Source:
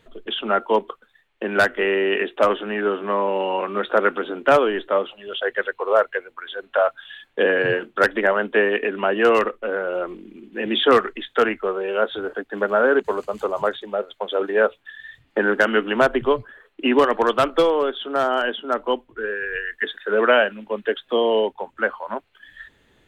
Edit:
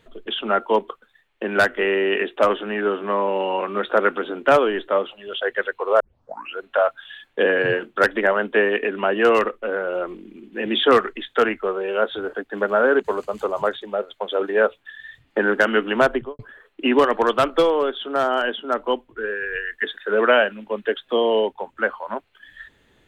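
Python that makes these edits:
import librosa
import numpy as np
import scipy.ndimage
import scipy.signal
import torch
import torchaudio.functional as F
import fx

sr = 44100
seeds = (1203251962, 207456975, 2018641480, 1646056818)

y = fx.studio_fade_out(x, sr, start_s=16.08, length_s=0.31)
y = fx.edit(y, sr, fx.tape_start(start_s=6.0, length_s=0.61), tone=tone)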